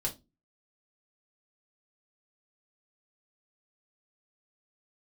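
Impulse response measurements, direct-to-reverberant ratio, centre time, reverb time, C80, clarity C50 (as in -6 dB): -2.5 dB, 13 ms, 0.25 s, 24.5 dB, 15.5 dB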